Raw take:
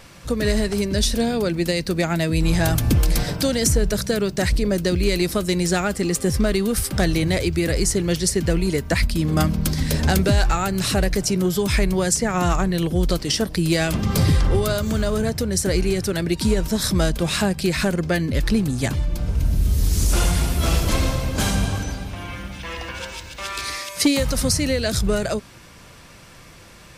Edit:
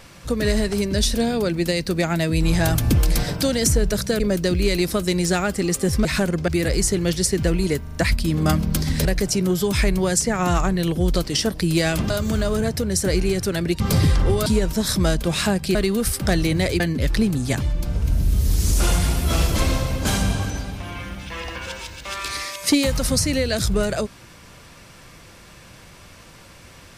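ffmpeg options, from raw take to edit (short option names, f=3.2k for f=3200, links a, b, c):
-filter_complex "[0:a]asplit=13[a][b][c][d][e][f][g][h][i][j][k][l][m];[a]atrim=end=4.202[n];[b]atrim=start=4.608:end=6.462[o];[c]atrim=start=17.698:end=18.132[p];[d]atrim=start=7.508:end=8.902[q];[e]atrim=start=8.858:end=8.902[r];[f]atrim=start=8.858:end=8.902[s];[g]atrim=start=8.858:end=9.962[t];[h]atrim=start=10.998:end=14.052[u];[i]atrim=start=14.708:end=16.412[v];[j]atrim=start=14.048:end=14.712[w];[k]atrim=start=16.408:end=17.702[x];[l]atrim=start=6.458:end=7.512[y];[m]atrim=start=18.128[z];[n][o]acrossfade=d=0.004:c1=hsin:c2=hsin[aa];[aa][p]acrossfade=d=0.004:c1=hsin:c2=hsin[ab];[ab][q]acrossfade=d=0.004:c1=hsin:c2=hsin[ac];[ac][r]acrossfade=d=0.004:c1=hsin:c2=hsin[ad];[ad][s]acrossfade=d=0.004:c1=hsin:c2=hsin[ae];[ae][t]acrossfade=d=0.004:c1=hsin:c2=hsin[af];[af][u]acrossfade=d=0.004:c1=hsin:c2=hsin[ag];[ag][v]acrossfade=d=0.004:c1=hsin:c2=hsin[ah];[ah][w]acrossfade=d=0.004:c1=hsin:c2=hsin[ai];[ai][x]acrossfade=d=0.004:c1=hsin:c2=hsin[aj];[aj][y]acrossfade=d=0.004:c1=hsin:c2=hsin[ak];[ak][z]acrossfade=d=0.004:c1=hsin:c2=hsin"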